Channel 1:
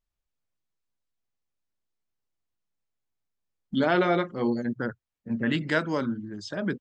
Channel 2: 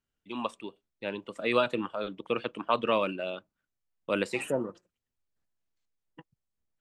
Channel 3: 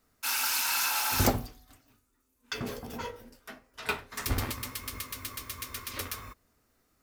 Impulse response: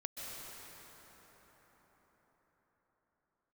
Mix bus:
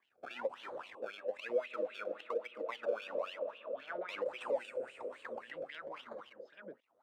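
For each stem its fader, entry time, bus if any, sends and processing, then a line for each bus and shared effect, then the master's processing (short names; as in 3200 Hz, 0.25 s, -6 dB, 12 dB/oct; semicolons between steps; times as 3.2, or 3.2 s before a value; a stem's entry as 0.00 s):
-11.0 dB, 0.00 s, no bus, no send, dry
-3.0 dB, 0.00 s, bus A, send -6.5 dB, graphic EQ 125/250/500/1000/2000/4000/8000 Hz +7/+7/+9/-10/-4/-5/+10 dB; overdrive pedal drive 13 dB, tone 8000 Hz, clips at -6.5 dBFS; high shelf 7200 Hz +11 dB
+0.5 dB, 0.00 s, muted 0.95–2.93, bus A, no send, compressor, threshold -35 dBFS, peak gain reduction 15 dB
bus A: 0.0 dB, decimation with a swept rate 31×, swing 100% 1.1 Hz; compressor 4:1, threshold -28 dBFS, peak gain reduction 11 dB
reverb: on, RT60 5.6 s, pre-delay 0.118 s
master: wah 3.7 Hz 510–3100 Hz, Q 6.9; three-band squash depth 40%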